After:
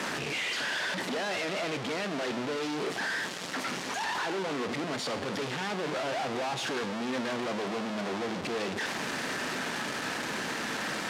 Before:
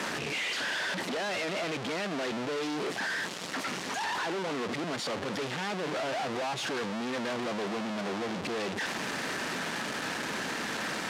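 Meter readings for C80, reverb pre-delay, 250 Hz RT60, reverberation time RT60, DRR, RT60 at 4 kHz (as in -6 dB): 15.0 dB, 4 ms, 1.1 s, 1.0 s, 10.0 dB, 0.95 s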